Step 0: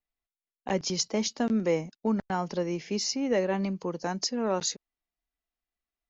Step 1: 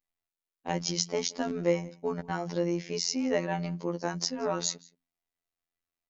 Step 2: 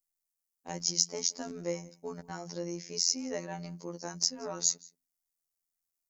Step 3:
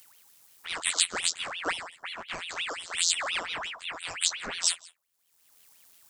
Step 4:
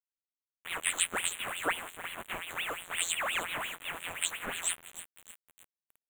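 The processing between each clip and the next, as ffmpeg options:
ffmpeg -i in.wav -filter_complex "[0:a]bandreject=frequency=60:width_type=h:width=6,bandreject=frequency=120:width_type=h:width=6,bandreject=frequency=180:width_type=h:width=6,bandreject=frequency=240:width_type=h:width=6,asplit=2[link_01][link_02];[link_02]adelay=174.9,volume=-23dB,highshelf=frequency=4000:gain=-3.94[link_03];[link_01][link_03]amix=inputs=2:normalize=0,afftfilt=real='hypot(re,im)*cos(PI*b)':imag='0':win_size=2048:overlap=0.75,volume=2.5dB" out.wav
ffmpeg -i in.wav -af "highshelf=frequency=5300:gain=-5,aexciter=amount=8.2:drive=4.3:freq=4800,volume=-8.5dB" out.wav
ffmpeg -i in.wav -af "acompressor=mode=upward:threshold=-37dB:ratio=2.5,flanger=delay=16.5:depth=3.4:speed=1.7,aeval=exprs='val(0)*sin(2*PI*2000*n/s+2000*0.6/5.7*sin(2*PI*5.7*n/s))':channel_layout=same,volume=9dB" out.wav
ffmpeg -i in.wav -af "aecho=1:1:312|624|936|1248|1560:0.224|0.114|0.0582|0.0297|0.0151,aeval=exprs='val(0)*gte(abs(val(0)),0.015)':channel_layout=same,asuperstop=centerf=5100:order=4:qfactor=0.97" out.wav

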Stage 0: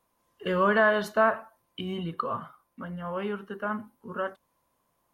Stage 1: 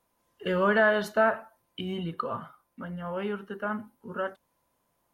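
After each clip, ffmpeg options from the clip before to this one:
ffmpeg -i in.wav -af "bandreject=frequency=1100:width=9.8" out.wav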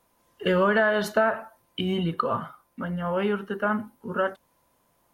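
ffmpeg -i in.wav -af "acompressor=threshold=-25dB:ratio=6,volume=7dB" out.wav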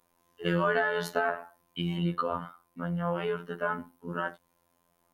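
ffmpeg -i in.wav -af "afftfilt=real='hypot(re,im)*cos(PI*b)':imag='0':win_size=2048:overlap=0.75,volume=-1dB" out.wav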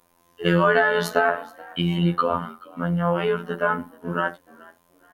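ffmpeg -i in.wav -filter_complex "[0:a]asplit=3[link_01][link_02][link_03];[link_02]adelay=428,afreqshift=56,volume=-23dB[link_04];[link_03]adelay=856,afreqshift=112,volume=-32.4dB[link_05];[link_01][link_04][link_05]amix=inputs=3:normalize=0,volume=8.5dB" out.wav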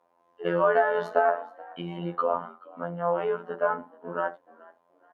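ffmpeg -i in.wav -af "bandpass=frequency=690:width_type=q:width=1.4:csg=0" out.wav

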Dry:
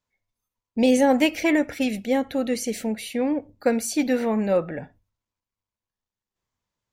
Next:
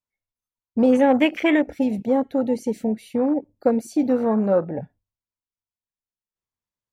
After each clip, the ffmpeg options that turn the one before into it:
ffmpeg -i in.wav -filter_complex "[0:a]afwtdn=0.0355,asplit=2[link_01][link_02];[link_02]acompressor=threshold=-27dB:ratio=6,volume=-1.5dB[link_03];[link_01][link_03]amix=inputs=2:normalize=0" out.wav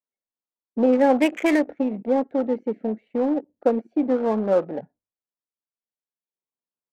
ffmpeg -i in.wav -filter_complex "[0:a]acrossover=split=200 2800:gain=0.0631 1 0.158[link_01][link_02][link_03];[link_01][link_02][link_03]amix=inputs=3:normalize=0,adynamicsmooth=sensitivity=6:basefreq=1100" out.wav

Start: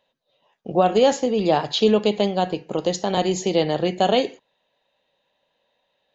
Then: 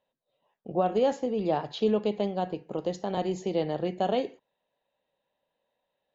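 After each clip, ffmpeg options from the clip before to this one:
ffmpeg -i in.wav -af "highshelf=frequency=2500:gain=-11.5,volume=-7.5dB" out.wav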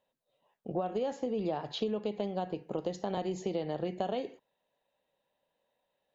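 ffmpeg -i in.wav -af "acompressor=threshold=-29dB:ratio=10" out.wav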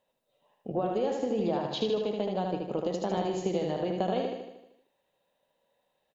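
ffmpeg -i in.wav -af "aecho=1:1:77|154|231|308|385|462|539|616:0.631|0.353|0.198|0.111|0.0621|0.0347|0.0195|0.0109,volume=2.5dB" out.wav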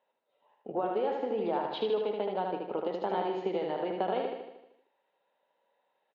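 ffmpeg -i in.wav -af "highpass=270,equalizer=frequency=410:width_type=q:width=4:gain=4,equalizer=frequency=890:width_type=q:width=4:gain=8,equalizer=frequency=1400:width_type=q:width=4:gain=7,equalizer=frequency=2100:width_type=q:width=4:gain=4,lowpass=frequency=3700:width=0.5412,lowpass=frequency=3700:width=1.3066,volume=-3dB" out.wav

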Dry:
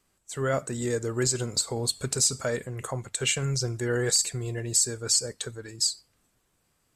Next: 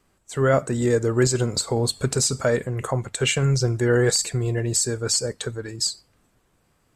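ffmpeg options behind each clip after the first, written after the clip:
ffmpeg -i in.wav -af "highshelf=frequency=2800:gain=-9,volume=8.5dB" out.wav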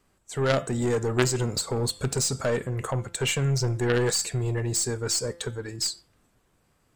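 ffmpeg -i in.wav -af "aeval=exprs='0.422*(cos(1*acos(clip(val(0)/0.422,-1,1)))-cos(1*PI/2))+0.188*(cos(3*acos(clip(val(0)/0.422,-1,1)))-cos(3*PI/2))+0.0944*(cos(5*acos(clip(val(0)/0.422,-1,1)))-cos(5*PI/2))+0.00841*(cos(7*acos(clip(val(0)/0.422,-1,1)))-cos(7*PI/2))+0.00473*(cos(8*acos(clip(val(0)/0.422,-1,1)))-cos(8*PI/2))':channel_layout=same,bandreject=frequency=171.1:width_type=h:width=4,bandreject=frequency=342.2:width_type=h:width=4,bandreject=frequency=513.3:width_type=h:width=4,bandreject=frequency=684.4:width_type=h:width=4,bandreject=frequency=855.5:width_type=h:width=4,bandreject=frequency=1026.6:width_type=h:width=4,bandreject=frequency=1197.7:width_type=h:width=4,bandreject=frequency=1368.8:width_type=h:width=4,bandreject=frequency=1539.9:width_type=h:width=4,bandreject=frequency=1711:width_type=h:width=4,bandreject=frequency=1882.1:width_type=h:width=4,bandreject=frequency=2053.2:width_type=h:width=4,bandreject=frequency=2224.3:width_type=h:width=4,bandreject=frequency=2395.4:width_type=h:width=4,bandreject=frequency=2566.5:width_type=h:width=4,bandreject=frequency=2737.6:width_type=h:width=4,bandreject=frequency=2908.7:width_type=h:width=4,bandreject=frequency=3079.8:width_type=h:width=4,bandreject=frequency=3250.9:width_type=h:width=4,bandreject=frequency=3422:width_type=h:width=4,bandreject=frequency=3593.1:width_type=h:width=4,bandreject=frequency=3764.2:width_type=h:width=4,volume=2dB" out.wav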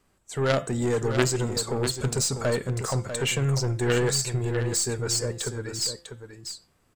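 ffmpeg -i in.wav -af "aecho=1:1:646:0.355" out.wav

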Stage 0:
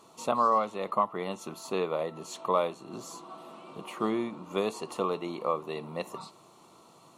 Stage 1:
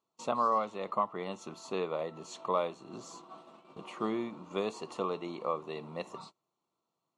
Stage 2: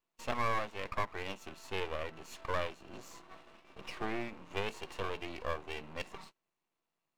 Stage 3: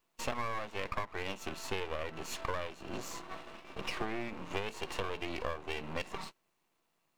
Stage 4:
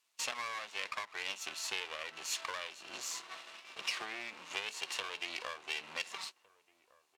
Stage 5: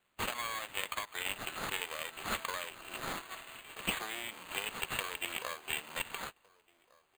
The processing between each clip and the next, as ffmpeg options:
ffmpeg -i in.wav -af "agate=range=-25dB:threshold=-46dB:ratio=16:detection=peak,lowpass=frequency=7900:width=0.5412,lowpass=frequency=7900:width=1.3066,volume=-4dB" out.wav
ffmpeg -i in.wav -af "superequalizer=11b=3.16:12b=2.82,aeval=exprs='max(val(0),0)':channel_layout=same" out.wav
ffmpeg -i in.wav -af "acompressor=threshold=-40dB:ratio=10,volume=9dB" out.wav
ffmpeg -i in.wav -filter_complex "[0:a]bandpass=frequency=5800:width_type=q:width=0.61:csg=0,asplit=2[link_01][link_02];[link_02]adelay=1458,volume=-22dB,highshelf=frequency=4000:gain=-32.8[link_03];[link_01][link_03]amix=inputs=2:normalize=0,volume=7dB" out.wav
ffmpeg -i in.wav -af "acrusher=samples=8:mix=1:aa=0.000001,volume=2dB" out.wav

